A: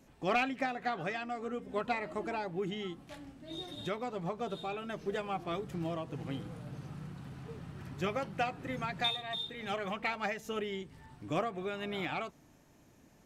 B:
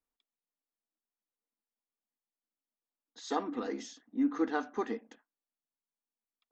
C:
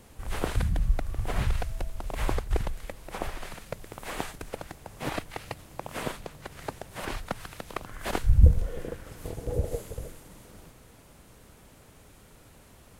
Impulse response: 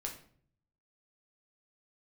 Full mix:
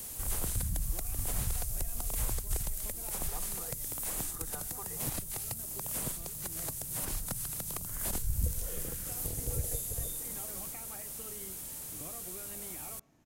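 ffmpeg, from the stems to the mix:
-filter_complex "[0:a]acompressor=threshold=-40dB:ratio=6,adelay=700,volume=-7.5dB,asplit=2[link_01][link_02];[link_02]volume=-10dB[link_03];[1:a]highpass=frequency=530:width=0.5412,highpass=frequency=530:width=1.3066,volume=-1dB[link_04];[2:a]highshelf=frequency=3700:gain=12,crystalizer=i=2:c=0,volume=-0.5dB[link_05];[3:a]atrim=start_sample=2205[link_06];[link_03][link_06]afir=irnorm=-1:irlink=0[link_07];[link_01][link_04][link_05][link_07]amix=inputs=4:normalize=0,acrossover=split=200|1200|6000[link_08][link_09][link_10][link_11];[link_08]acompressor=threshold=-31dB:ratio=4[link_12];[link_09]acompressor=threshold=-47dB:ratio=4[link_13];[link_10]acompressor=threshold=-54dB:ratio=4[link_14];[link_11]acompressor=threshold=-36dB:ratio=4[link_15];[link_12][link_13][link_14][link_15]amix=inputs=4:normalize=0"

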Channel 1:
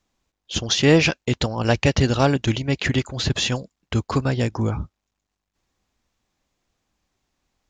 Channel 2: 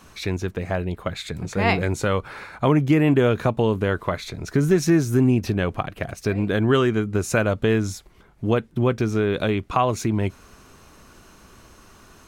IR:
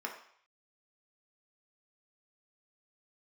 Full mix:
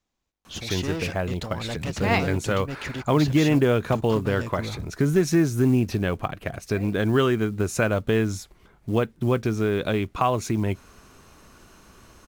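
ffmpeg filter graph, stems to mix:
-filter_complex "[0:a]asoftclip=type=tanh:threshold=-20.5dB,volume=-7dB[link_01];[1:a]adelay=450,volume=-2dB[link_02];[link_01][link_02]amix=inputs=2:normalize=0,acrusher=bits=8:mode=log:mix=0:aa=0.000001"

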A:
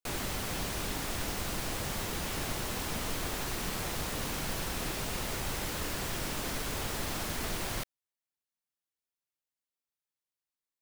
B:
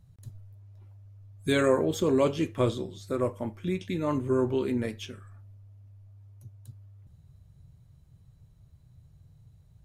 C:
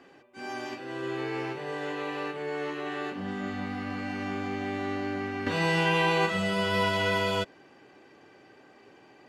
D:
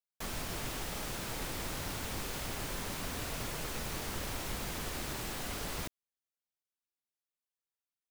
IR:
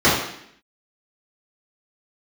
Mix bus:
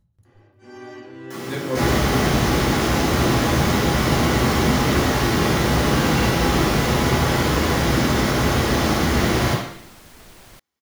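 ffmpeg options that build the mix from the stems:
-filter_complex "[0:a]adelay=1700,volume=-4.5dB,asplit=3[link_01][link_02][link_03];[link_02]volume=-3.5dB[link_04];[link_03]volume=-6dB[link_05];[1:a]aeval=exprs='val(0)*pow(10,-22*(0.5-0.5*cos(2*PI*5.2*n/s))/20)':channel_layout=same,volume=-4.5dB,asplit=2[link_06][link_07];[link_07]volume=-23dB[link_08];[2:a]adelay=250,volume=-10dB,asplit=2[link_09][link_10];[link_10]volume=-19dB[link_11];[3:a]highpass=frequency=130:width=0.5412,highpass=frequency=130:width=1.3066,adelay=1100,volume=-2.5dB,asplit=2[link_12][link_13];[link_13]volume=-15dB[link_14];[4:a]atrim=start_sample=2205[link_15];[link_04][link_08][link_11][link_14]amix=inputs=4:normalize=0[link_16];[link_16][link_15]afir=irnorm=-1:irlink=0[link_17];[link_05]aecho=0:1:1060:1[link_18];[link_01][link_06][link_09][link_12][link_17][link_18]amix=inputs=6:normalize=0"

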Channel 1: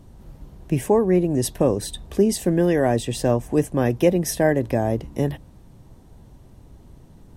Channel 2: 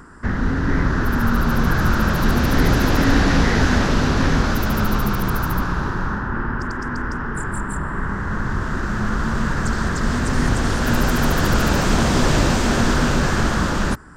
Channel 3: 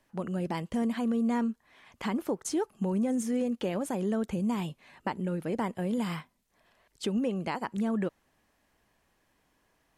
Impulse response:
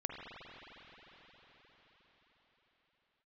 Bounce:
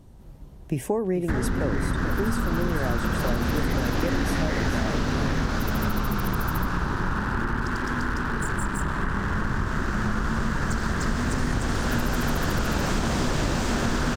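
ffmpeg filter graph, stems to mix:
-filter_complex "[0:a]volume=-3dB,asplit=2[link_01][link_02];[link_02]volume=-9.5dB[link_03];[1:a]aeval=exprs='sgn(val(0))*max(abs(val(0))-0.015,0)':channel_layout=same,adelay=1050,volume=2dB[link_04];[link_03]aecho=0:1:436:1[link_05];[link_01][link_04][link_05]amix=inputs=3:normalize=0,acompressor=threshold=-21dB:ratio=6"

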